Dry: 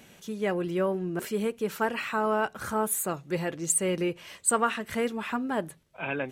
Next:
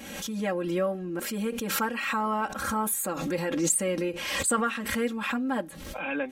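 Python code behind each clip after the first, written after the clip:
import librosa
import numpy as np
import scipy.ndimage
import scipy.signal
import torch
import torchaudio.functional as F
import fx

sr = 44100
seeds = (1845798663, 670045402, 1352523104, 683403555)

y = x + 0.95 * np.pad(x, (int(3.7 * sr / 1000.0), 0))[:len(x)]
y = fx.pre_swell(y, sr, db_per_s=39.0)
y = F.gain(torch.from_numpy(y), -3.5).numpy()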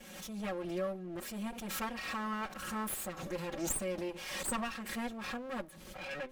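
y = fx.lower_of_two(x, sr, delay_ms=5.4)
y = F.gain(torch.from_numpy(y), -8.5).numpy()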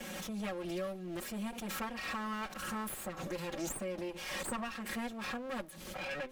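y = fx.band_squash(x, sr, depth_pct=70)
y = F.gain(torch.from_numpy(y), -1.5).numpy()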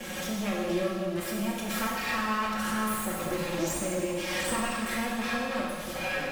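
y = fx.rev_plate(x, sr, seeds[0], rt60_s=2.0, hf_ratio=0.95, predelay_ms=0, drr_db=-4.0)
y = F.gain(torch.from_numpy(y), 4.0).numpy()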